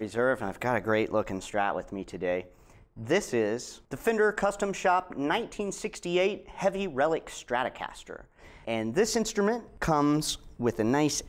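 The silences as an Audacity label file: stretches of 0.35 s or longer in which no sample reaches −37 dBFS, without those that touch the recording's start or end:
2.410000	2.980000	silence
8.210000	8.680000	silence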